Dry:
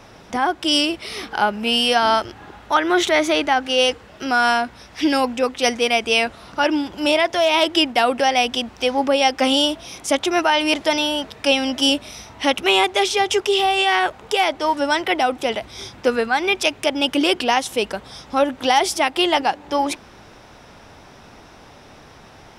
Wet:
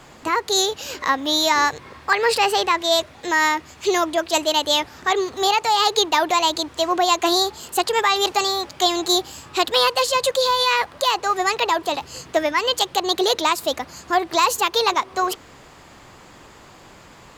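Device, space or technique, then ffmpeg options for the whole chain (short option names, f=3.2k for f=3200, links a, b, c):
nightcore: -af "asetrate=57330,aresample=44100,volume=-1dB"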